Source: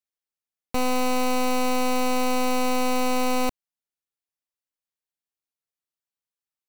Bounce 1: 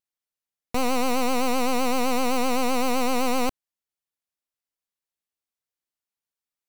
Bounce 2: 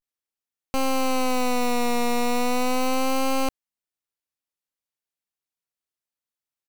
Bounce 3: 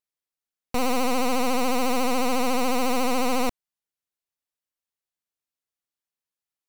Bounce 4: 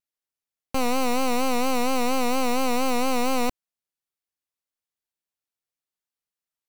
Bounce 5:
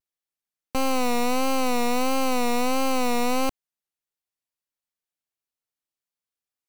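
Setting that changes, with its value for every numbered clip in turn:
vibrato, rate: 7.8, 0.37, 14, 4.3, 1.5 Hz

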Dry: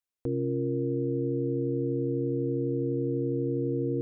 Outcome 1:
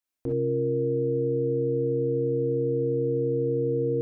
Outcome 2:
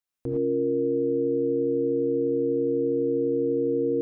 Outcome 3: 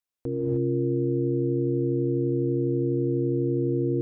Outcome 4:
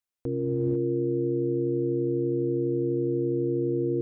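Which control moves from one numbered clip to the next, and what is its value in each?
non-linear reverb, gate: 80, 130, 330, 520 ms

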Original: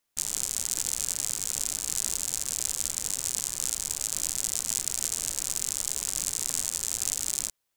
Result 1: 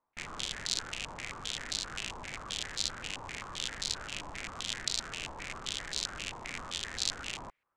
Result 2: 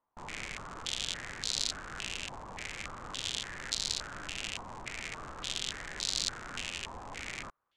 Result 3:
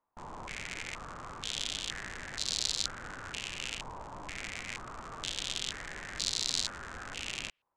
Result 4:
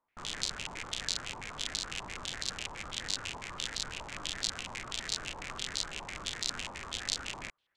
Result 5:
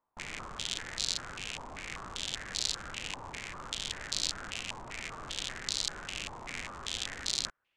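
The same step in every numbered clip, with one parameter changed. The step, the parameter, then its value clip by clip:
stepped low-pass, rate: 7.6, 3.5, 2.1, 12, 5.1 Hz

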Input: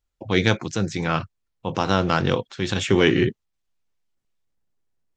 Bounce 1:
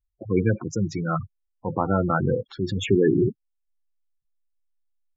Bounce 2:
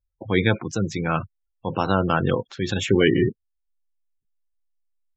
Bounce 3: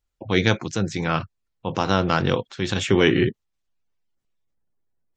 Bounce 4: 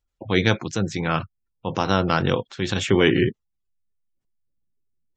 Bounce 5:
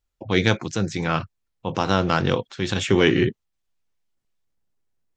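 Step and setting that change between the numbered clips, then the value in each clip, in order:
spectral gate, under each frame's peak: -10, -20, -45, -35, -60 dB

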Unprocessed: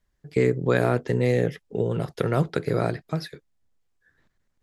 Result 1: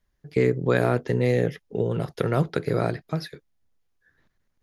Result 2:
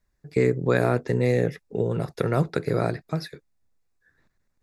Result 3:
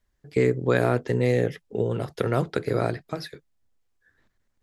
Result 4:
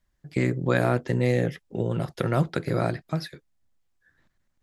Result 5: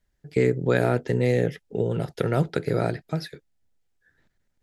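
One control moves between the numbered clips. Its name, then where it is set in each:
notch, frequency: 7800, 3100, 160, 440, 1100 Hz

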